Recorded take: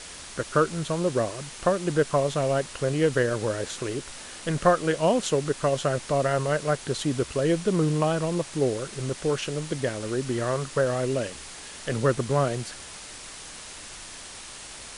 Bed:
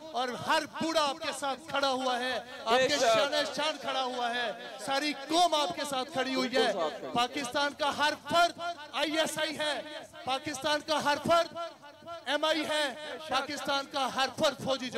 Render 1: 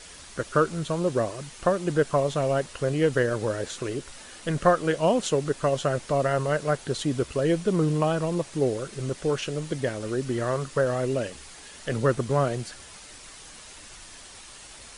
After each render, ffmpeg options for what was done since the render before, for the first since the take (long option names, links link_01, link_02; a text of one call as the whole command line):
ffmpeg -i in.wav -af "afftdn=noise_reduction=6:noise_floor=-42" out.wav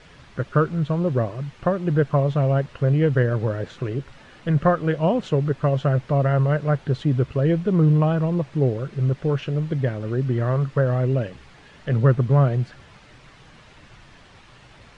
ffmpeg -i in.wav -af "lowpass=2700,equalizer=frequency=130:width_type=o:width=1:gain=12" out.wav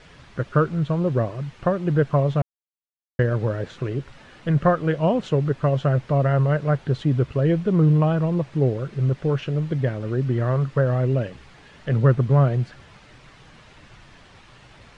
ffmpeg -i in.wav -filter_complex "[0:a]asplit=3[link_01][link_02][link_03];[link_01]atrim=end=2.42,asetpts=PTS-STARTPTS,afade=type=out:start_time=2.416:duration=0.004:curve=hsin[link_04];[link_02]atrim=start=2.42:end=3.19,asetpts=PTS-STARTPTS,volume=0[link_05];[link_03]atrim=start=3.19,asetpts=PTS-STARTPTS,afade=type=in:duration=0.004:curve=hsin[link_06];[link_04][link_05][link_06]concat=n=3:v=0:a=1" out.wav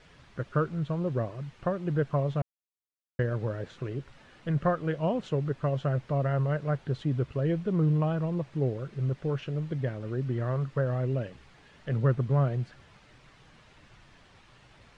ffmpeg -i in.wav -af "volume=-8dB" out.wav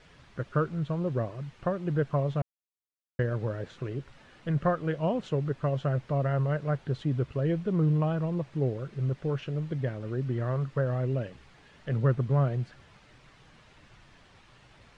ffmpeg -i in.wav -af anull out.wav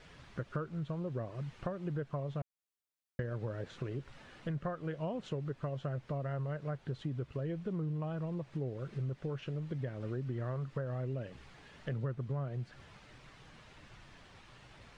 ffmpeg -i in.wav -af "acompressor=threshold=-36dB:ratio=4" out.wav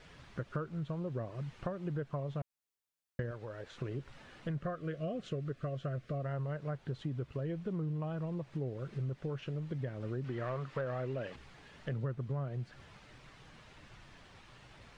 ffmpeg -i in.wav -filter_complex "[0:a]asettb=1/sr,asplit=3[link_01][link_02][link_03];[link_01]atrim=end=3.314[link_04];[link_02]atrim=start=3.31:end=3.78,asetpts=PTS-STARTPTS,afade=type=in:duration=0.004:curve=qsin,afade=type=out:start_time=0.466:duration=0.004:curve=qsin,equalizer=frequency=160:width=0.6:gain=-11[link_05];[link_03]atrim=start=3.776[link_06];[link_04][link_05]acrossfade=duration=0.004:curve1=hsin:curve2=qsin[link_07];[link_07][link_06]acrossfade=duration=0.004:curve1=qsin:curve2=hsin,asettb=1/sr,asplit=3[link_08][link_09][link_10];[link_08]atrim=end=4.654[link_11];[link_09]atrim=start=4.65:end=6.24,asetpts=PTS-STARTPTS,afade=type=in:duration=0.004:curve=qsin,afade=type=out:start_time=1.586:duration=0.004:curve=qsin,asuperstop=centerf=890:order=20:qfactor=2.9[link_12];[link_10]atrim=start=6.236[link_13];[link_11][link_12]acrossfade=duration=0.004:curve1=hsin:curve2=qsin[link_14];[link_14][link_13]acrossfade=duration=0.004:curve1=qsin:curve2=hsin,asettb=1/sr,asplit=3[link_15][link_16][link_17];[link_15]atrim=end=10.244[link_18];[link_16]atrim=start=10.24:end=11.36,asetpts=PTS-STARTPTS,afade=type=in:duration=0.004:curve=qsin,afade=type=out:start_time=1.116:duration=0.004:curve=qsin,asplit=2[link_19][link_20];[link_20]highpass=frequency=720:poles=1,volume=14dB,asoftclip=type=tanh:threshold=-25dB[link_21];[link_19][link_21]amix=inputs=2:normalize=0,lowpass=frequency=4000:poles=1,volume=-6dB[link_22];[link_17]atrim=start=11.356[link_23];[link_18][link_22]acrossfade=duration=0.004:curve1=hsin:curve2=qsin[link_24];[link_24][link_23]acrossfade=duration=0.004:curve1=qsin:curve2=hsin" out.wav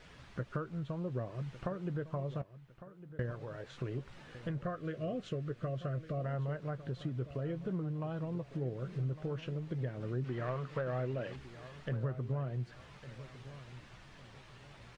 ffmpeg -i in.wav -filter_complex "[0:a]asplit=2[link_01][link_02];[link_02]adelay=16,volume=-13.5dB[link_03];[link_01][link_03]amix=inputs=2:normalize=0,asplit=2[link_04][link_05];[link_05]adelay=1155,lowpass=frequency=4100:poles=1,volume=-14.5dB,asplit=2[link_06][link_07];[link_07]adelay=1155,lowpass=frequency=4100:poles=1,volume=0.35,asplit=2[link_08][link_09];[link_09]adelay=1155,lowpass=frequency=4100:poles=1,volume=0.35[link_10];[link_04][link_06][link_08][link_10]amix=inputs=4:normalize=0" out.wav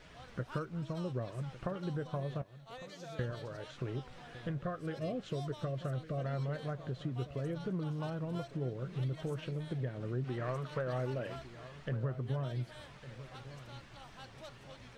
ffmpeg -i in.wav -i bed.wav -filter_complex "[1:a]volume=-24dB[link_01];[0:a][link_01]amix=inputs=2:normalize=0" out.wav